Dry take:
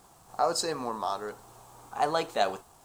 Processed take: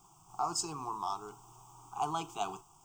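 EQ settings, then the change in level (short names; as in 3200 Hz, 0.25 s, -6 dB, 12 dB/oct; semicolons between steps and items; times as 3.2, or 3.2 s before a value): fixed phaser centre 350 Hz, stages 8; fixed phaser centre 2800 Hz, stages 8; 0.0 dB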